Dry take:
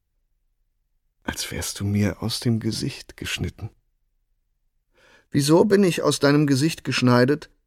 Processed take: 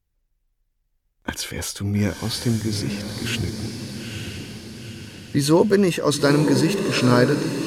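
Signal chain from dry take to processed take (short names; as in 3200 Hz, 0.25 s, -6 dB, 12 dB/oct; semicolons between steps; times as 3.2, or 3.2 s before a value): diffused feedback echo 0.908 s, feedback 52%, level -5.5 dB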